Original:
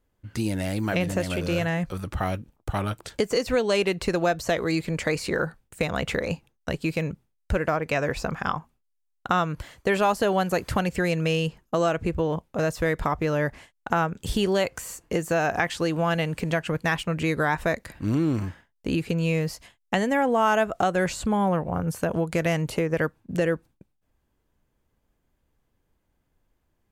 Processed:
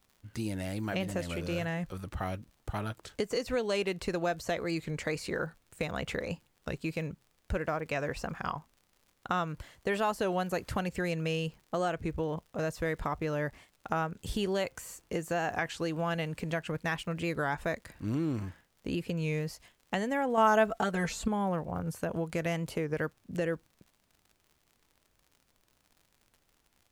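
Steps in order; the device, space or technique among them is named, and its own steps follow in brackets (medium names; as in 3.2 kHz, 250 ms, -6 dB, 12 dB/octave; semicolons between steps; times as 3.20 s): warped LP (warped record 33 1/3 rpm, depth 100 cents; crackle 70 per s -41 dBFS; pink noise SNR 40 dB); 20.37–21.28 s: comb 4.5 ms, depth 97%; trim -8 dB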